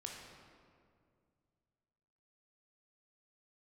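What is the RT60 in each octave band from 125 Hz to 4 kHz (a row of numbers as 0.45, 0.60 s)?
3.1, 2.6, 2.4, 2.0, 1.7, 1.2 s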